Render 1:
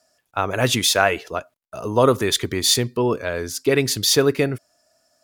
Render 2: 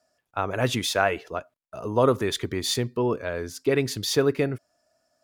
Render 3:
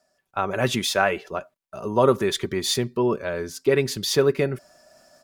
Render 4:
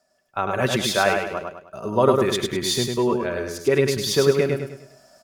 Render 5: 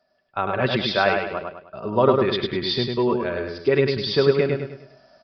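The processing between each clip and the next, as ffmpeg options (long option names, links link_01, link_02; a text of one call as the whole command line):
ffmpeg -i in.wav -af "highshelf=frequency=3100:gain=-8,volume=-4dB" out.wav
ffmpeg -i in.wav -af "aecho=1:1:5.2:0.42,areverse,acompressor=mode=upward:threshold=-42dB:ratio=2.5,areverse,volume=1.5dB" out.wav
ffmpeg -i in.wav -af "aecho=1:1:102|204|306|408|510:0.631|0.246|0.096|0.0374|0.0146" out.wav
ffmpeg -i in.wav -af "aresample=11025,aresample=44100" out.wav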